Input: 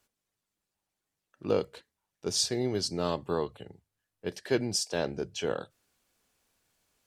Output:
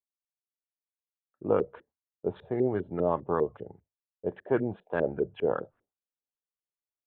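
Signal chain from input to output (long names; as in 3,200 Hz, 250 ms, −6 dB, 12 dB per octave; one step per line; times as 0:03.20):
downsampling to 8,000 Hz
downward expander −56 dBFS
auto-filter low-pass saw up 5 Hz 380–1,700 Hz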